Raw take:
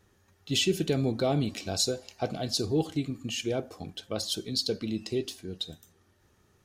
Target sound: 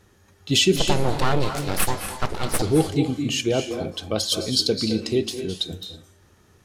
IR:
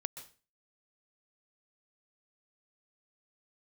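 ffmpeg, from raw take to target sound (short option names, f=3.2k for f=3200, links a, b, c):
-filter_complex "[0:a]asettb=1/sr,asplit=3[a][b][c];[a]atrim=end=0.764[d];[b]atrim=start=0.76:end=2.62,asetpts=PTS-STARTPTS,afade=t=in:d=0.004:c=qsin,afade=t=out:st=1.856:d=0.004:c=qsin,aeval=exprs='abs(val(0))':c=same[e];[c]atrim=start=2.616[f];[d][e]acrossfade=d=0.004:c1=hsin:c2=qsin[g];[g][f]acrossfade=d=0.004:c1=qsin:c2=hsin[h];[1:a]atrim=start_sample=2205,afade=t=out:st=0.24:d=0.01,atrim=end_sample=11025,asetrate=25578,aresample=44100[i];[h][i]afir=irnorm=-1:irlink=0,volume=7dB"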